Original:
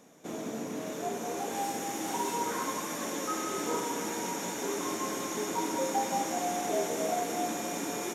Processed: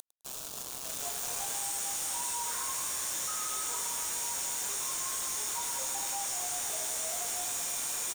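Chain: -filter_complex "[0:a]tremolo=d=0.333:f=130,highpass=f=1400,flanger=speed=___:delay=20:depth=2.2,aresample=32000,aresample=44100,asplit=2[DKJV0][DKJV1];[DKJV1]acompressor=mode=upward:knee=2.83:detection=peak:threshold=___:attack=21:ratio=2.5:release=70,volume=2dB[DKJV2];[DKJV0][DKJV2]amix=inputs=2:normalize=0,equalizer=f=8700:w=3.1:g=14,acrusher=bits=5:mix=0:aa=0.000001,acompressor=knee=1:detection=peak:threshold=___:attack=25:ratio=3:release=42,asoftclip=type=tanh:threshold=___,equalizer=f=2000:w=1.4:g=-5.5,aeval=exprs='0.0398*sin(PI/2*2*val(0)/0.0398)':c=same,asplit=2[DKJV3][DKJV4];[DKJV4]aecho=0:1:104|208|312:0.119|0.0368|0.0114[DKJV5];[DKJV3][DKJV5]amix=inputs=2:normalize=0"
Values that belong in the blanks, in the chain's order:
2.1, -48dB, -49dB, -27.5dB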